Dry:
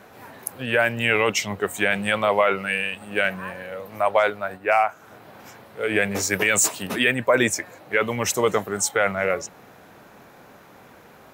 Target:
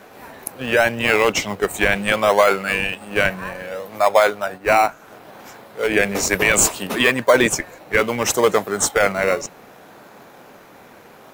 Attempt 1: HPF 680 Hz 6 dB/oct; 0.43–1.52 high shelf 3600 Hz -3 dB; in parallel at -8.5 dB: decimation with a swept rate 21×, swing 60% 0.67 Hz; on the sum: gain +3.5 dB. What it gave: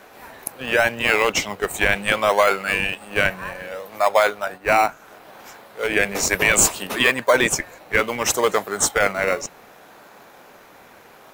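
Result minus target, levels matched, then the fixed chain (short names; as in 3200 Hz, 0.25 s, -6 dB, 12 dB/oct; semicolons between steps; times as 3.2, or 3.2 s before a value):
250 Hz band -3.0 dB
HPF 250 Hz 6 dB/oct; 0.43–1.52 high shelf 3600 Hz -3 dB; in parallel at -8.5 dB: decimation with a swept rate 21×, swing 60% 0.67 Hz; on the sum: gain +3.5 dB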